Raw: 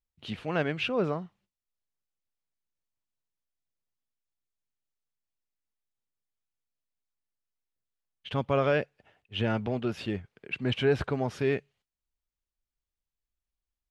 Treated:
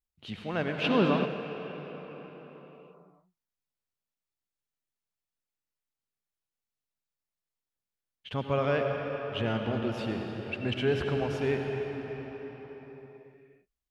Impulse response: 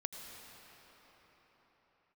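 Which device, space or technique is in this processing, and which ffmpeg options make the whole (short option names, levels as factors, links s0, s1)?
cathedral: -filter_complex "[1:a]atrim=start_sample=2205[s0];[0:a][s0]afir=irnorm=-1:irlink=0,asplit=3[s1][s2][s3];[s1]afade=t=out:st=0.83:d=0.02[s4];[s2]equalizer=f=250:t=o:w=1:g=10,equalizer=f=1000:t=o:w=1:g=8,equalizer=f=4000:t=o:w=1:g=7,afade=t=in:st=0.83:d=0.02,afade=t=out:st=1.24:d=0.02[s5];[s3]afade=t=in:st=1.24:d=0.02[s6];[s4][s5][s6]amix=inputs=3:normalize=0"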